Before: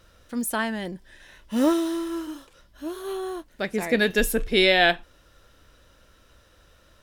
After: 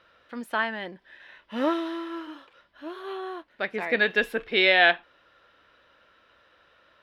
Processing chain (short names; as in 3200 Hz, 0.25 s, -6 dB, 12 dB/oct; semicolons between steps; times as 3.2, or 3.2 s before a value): HPF 1400 Hz 6 dB/oct; air absorption 390 m; gain +7.5 dB